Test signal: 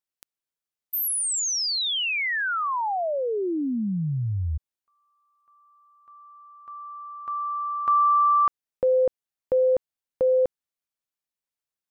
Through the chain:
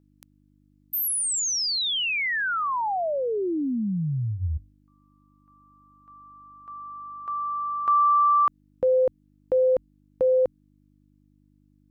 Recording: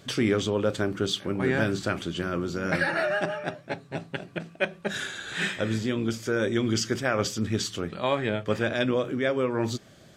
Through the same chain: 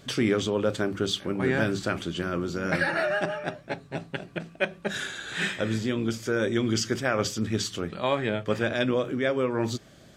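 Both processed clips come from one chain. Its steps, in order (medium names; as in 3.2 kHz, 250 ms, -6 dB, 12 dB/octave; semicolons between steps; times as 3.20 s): hum notches 50/100 Hz; mains buzz 50 Hz, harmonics 6, -62 dBFS -1 dB/octave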